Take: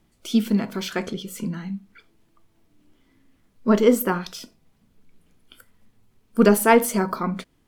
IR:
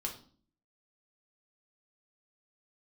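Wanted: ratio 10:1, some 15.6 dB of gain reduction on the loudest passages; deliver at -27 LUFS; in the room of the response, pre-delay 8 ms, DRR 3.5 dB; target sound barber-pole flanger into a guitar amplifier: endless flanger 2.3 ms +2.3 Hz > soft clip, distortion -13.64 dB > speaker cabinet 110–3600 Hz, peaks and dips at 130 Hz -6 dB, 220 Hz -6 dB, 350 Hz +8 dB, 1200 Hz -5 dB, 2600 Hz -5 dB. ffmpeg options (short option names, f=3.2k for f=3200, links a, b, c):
-filter_complex "[0:a]acompressor=threshold=-26dB:ratio=10,asplit=2[a][b];[1:a]atrim=start_sample=2205,adelay=8[c];[b][c]afir=irnorm=-1:irlink=0,volume=-4dB[d];[a][d]amix=inputs=2:normalize=0,asplit=2[e][f];[f]adelay=2.3,afreqshift=2.3[g];[e][g]amix=inputs=2:normalize=1,asoftclip=threshold=-27dB,highpass=110,equalizer=f=130:t=q:w=4:g=-6,equalizer=f=220:t=q:w=4:g=-6,equalizer=f=350:t=q:w=4:g=8,equalizer=f=1.2k:t=q:w=4:g=-5,equalizer=f=2.6k:t=q:w=4:g=-5,lowpass=f=3.6k:w=0.5412,lowpass=f=3.6k:w=1.3066,volume=9.5dB"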